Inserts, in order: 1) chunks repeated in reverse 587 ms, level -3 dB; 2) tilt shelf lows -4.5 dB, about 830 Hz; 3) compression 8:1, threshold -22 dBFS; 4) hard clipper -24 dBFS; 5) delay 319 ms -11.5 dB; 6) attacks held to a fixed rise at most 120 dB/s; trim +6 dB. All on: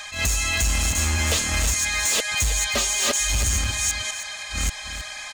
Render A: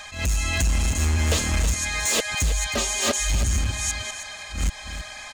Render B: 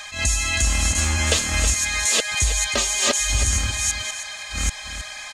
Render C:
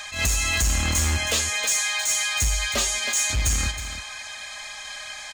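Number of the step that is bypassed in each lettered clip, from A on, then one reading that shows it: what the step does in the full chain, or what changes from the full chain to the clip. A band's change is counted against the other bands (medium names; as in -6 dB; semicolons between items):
2, momentary loudness spread change +2 LU; 4, distortion -11 dB; 1, momentary loudness spread change +4 LU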